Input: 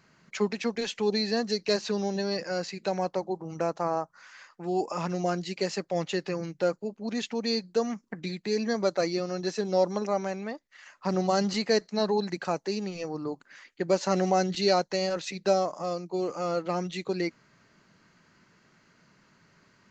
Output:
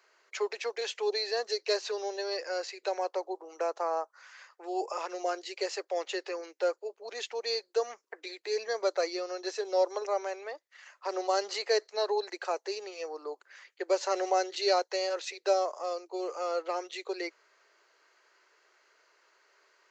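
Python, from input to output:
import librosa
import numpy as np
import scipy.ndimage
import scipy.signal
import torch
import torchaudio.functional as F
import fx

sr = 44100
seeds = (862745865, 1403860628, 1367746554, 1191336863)

y = scipy.signal.sosfilt(scipy.signal.butter(8, 380.0, 'highpass', fs=sr, output='sos'), x)
y = y * librosa.db_to_amplitude(-2.0)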